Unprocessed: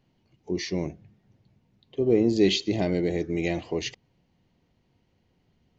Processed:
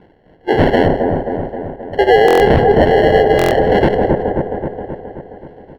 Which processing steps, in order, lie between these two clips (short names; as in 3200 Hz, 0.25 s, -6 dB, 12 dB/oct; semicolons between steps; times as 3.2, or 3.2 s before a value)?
steep high-pass 430 Hz 72 dB/oct; band shelf 1100 Hz +10.5 dB 1 oct; in parallel at -1 dB: compressor, threshold -40 dBFS, peak gain reduction 17.5 dB; on the sum: feedback echo 0.172 s, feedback 40%, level -14 dB; rotary speaker horn 1.2 Hz; sample-and-hold 36×; air absorption 410 m; on a send: dark delay 0.265 s, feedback 61%, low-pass 1100 Hz, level -4.5 dB; on the sum: maximiser +26 dB; stuck buffer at 2.26/3.37, samples 1024, times 5; gain -1.5 dB